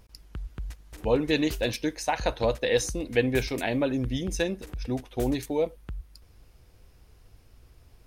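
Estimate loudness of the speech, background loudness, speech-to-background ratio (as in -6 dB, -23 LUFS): -28.0 LUFS, -42.0 LUFS, 14.0 dB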